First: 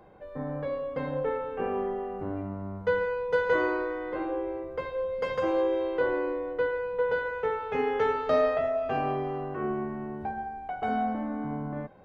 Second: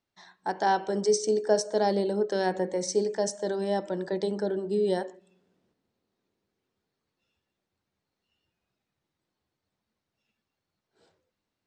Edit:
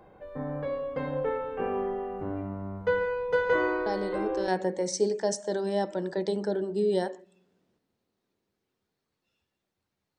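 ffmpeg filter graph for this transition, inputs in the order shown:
-filter_complex "[1:a]asplit=2[s0][s1];[0:a]apad=whole_dur=10.18,atrim=end=10.18,atrim=end=4.482[s2];[s1]atrim=start=2.428:end=8.13[s3];[s0]atrim=start=1.81:end=2.43,asetpts=PTS-STARTPTS,volume=0.473,afade=t=in:d=0.004:c=hsin,afade=t=out:st=0.616:d=0.004:c=hsin,adelay=3860[s4];[s2][s3]acrossfade=d=0.004:c1=hsin:c2=hsin[s5];[s5][s4]amix=inputs=2:normalize=0"

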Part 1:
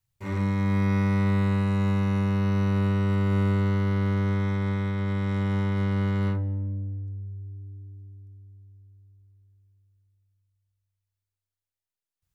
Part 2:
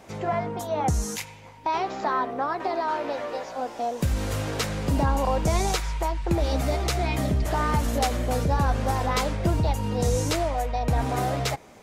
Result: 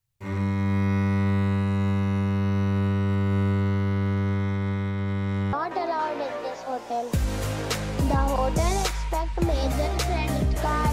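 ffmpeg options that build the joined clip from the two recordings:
-filter_complex "[0:a]apad=whole_dur=10.92,atrim=end=10.92,atrim=end=5.532[s0];[1:a]atrim=start=2.418:end=7.81[s1];[s0][s1]acrossfade=d=0.004:c1=hsin:c2=hsin"

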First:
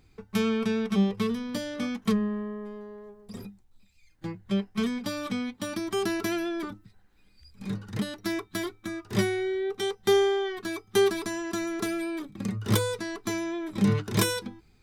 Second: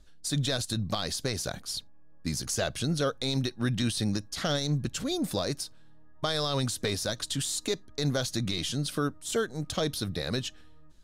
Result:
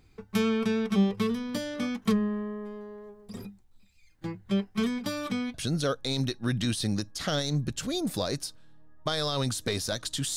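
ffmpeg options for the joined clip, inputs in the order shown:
-filter_complex "[0:a]apad=whole_dur=10.36,atrim=end=10.36,atrim=end=5.542[s0];[1:a]atrim=start=2.708:end=7.53[s1];[s0][s1]acrossfade=d=0.004:c1=hsin:c2=hsin"

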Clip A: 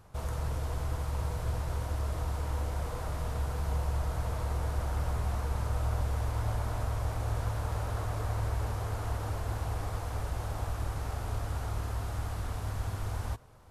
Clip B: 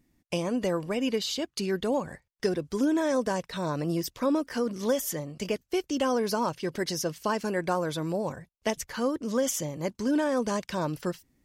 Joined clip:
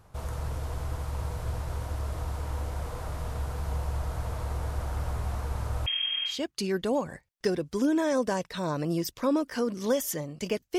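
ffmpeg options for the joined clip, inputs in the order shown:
-filter_complex "[0:a]asettb=1/sr,asplit=3[s0][s1][s2];[s0]atrim=end=5.864[s3];[s1]atrim=start=5.86:end=6.41,asetpts=PTS-STARTPTS,afade=t=in:d=0.004:c=qsin,afade=t=out:st=0.546:d=0.004:c=qsin,lowpass=f=2800:t=q:w=0.5098,lowpass=f=2800:t=q:w=0.6013,lowpass=f=2800:t=q:w=0.9,lowpass=f=2800:t=q:w=2.563,afreqshift=-3300[s4];[s2]atrim=start=6.406[s5];[s3][s4]acrossfade=d=0.004:c1=hsin:c2=qsin[s6];[s6][s5]acrossfade=d=0.004:c1=qsin:c2=hsin,apad=whole_dur=10.78,atrim=end=10.78,atrim=end=6.41,asetpts=PTS-STARTPTS[s7];[1:a]atrim=start=1.24:end=5.77,asetpts=PTS-STARTPTS[s8];[s7][s8]acrossfade=d=0.16:c1=tri:c2=tri"

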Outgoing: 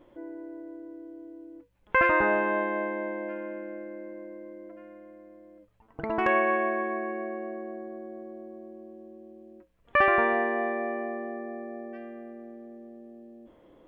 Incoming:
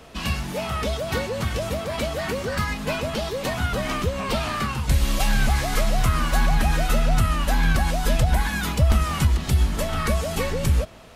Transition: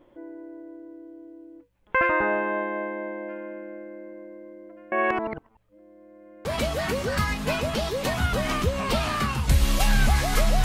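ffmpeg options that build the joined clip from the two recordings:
-filter_complex "[0:a]apad=whole_dur=10.64,atrim=end=10.64,asplit=2[s0][s1];[s0]atrim=end=4.922[s2];[s1]atrim=start=4.918:end=6.452,asetpts=PTS-STARTPTS,areverse[s3];[1:a]atrim=start=1.848:end=6.04[s4];[s2][s3]acrossfade=d=0.004:c1=hsin:c2=hsin[s5];[s5][s4]acrossfade=d=0.004:c1=hsin:c2=hsin"

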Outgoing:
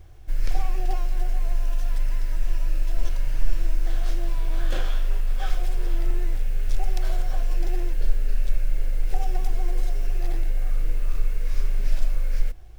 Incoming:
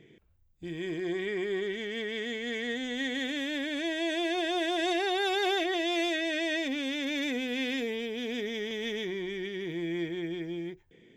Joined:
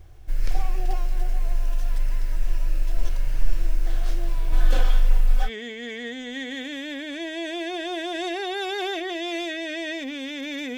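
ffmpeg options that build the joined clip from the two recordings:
-filter_complex "[0:a]asettb=1/sr,asplit=3[s0][s1][s2];[s0]atrim=end=4.524[s3];[s1]atrim=start=4.52:end=5.5,asetpts=PTS-STARTPTS,afade=t=in:d=0.004:c=qsin,afade=t=out:st=0.976:d=0.004:c=qsin,aecho=1:1:4:0.93,atrim=end_sample=43218[s4];[s2]atrim=start=5.496[s5];[s3][s4]acrossfade=d=0.004:c1=hsin:c2=qsin[s6];[s6][s5]acrossfade=d=0.004:c1=qsin:c2=hsin,apad=whole_dur=10.77,atrim=end=10.77,atrim=end=5.5,asetpts=PTS-STARTPTS[s7];[1:a]atrim=start=2.06:end=7.41,asetpts=PTS-STARTPTS[s8];[s7][s8]acrossfade=d=0.08:c1=tri:c2=tri"

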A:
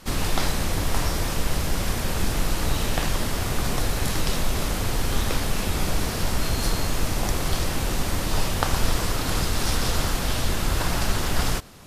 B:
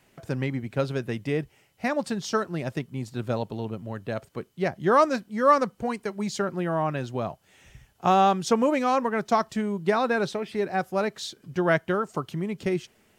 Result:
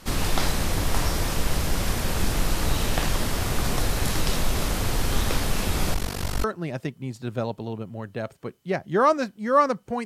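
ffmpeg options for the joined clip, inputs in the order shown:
-filter_complex "[0:a]asettb=1/sr,asplit=3[s0][s1][s2];[s0]atrim=end=5.944[s3];[s1]atrim=start=5.94:end=6.44,asetpts=PTS-STARTPTS,afade=t=in:d=0.004:c=qsin,afade=t=out:st=0.496:d=0.004:c=qsin,tremolo=f=48:d=0.947[s4];[s2]atrim=start=6.436[s5];[s3][s4]acrossfade=d=0.004:c1=hsin:c2=qsin[s6];[s6][s5]acrossfade=d=0.004:c1=qsin:c2=hsin,apad=whole_dur=10.05,atrim=end=10.05,atrim=end=6.442[s7];[1:a]atrim=start=2.358:end=5.97[s8];[s7][s8]acrossfade=d=0.004:c1=hsin:c2=hsin"

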